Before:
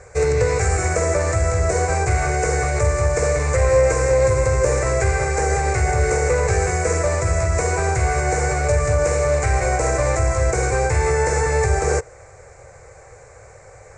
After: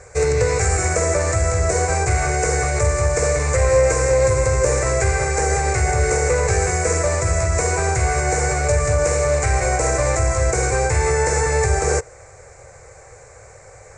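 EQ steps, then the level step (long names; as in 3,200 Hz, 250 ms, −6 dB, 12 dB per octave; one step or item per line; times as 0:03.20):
high-shelf EQ 4,200 Hz +5.5 dB
0.0 dB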